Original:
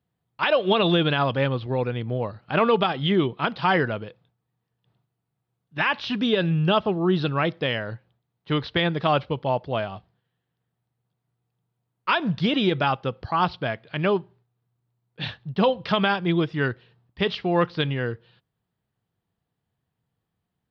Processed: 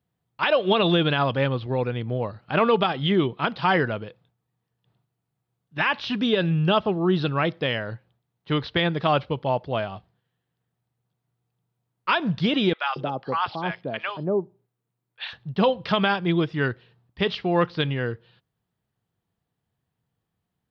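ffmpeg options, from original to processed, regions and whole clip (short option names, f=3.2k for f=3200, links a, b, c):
-filter_complex "[0:a]asettb=1/sr,asplit=3[a][b][c];[a]atrim=end=12.734[d];[b]atrim=start=12.73:end=15.33,asetpts=PTS-STARTPTS,afade=t=in:d=0.004:c=qsin,afade=t=out:st=2.596:d=0.004:c=qsin,highpass=180,acrossover=split=800|4700[e][f][g];[g]adelay=60[h];[e]adelay=230[i];[i][f][h]amix=inputs=3:normalize=0,atrim=end_sample=114660[j];[c]atrim=start=15.326[k];[d][j]acrossfade=d=0.004:c1=hsin:c2=qsin[l];[l][k]acrossfade=d=0.004:c1=qsin:c2=hsin"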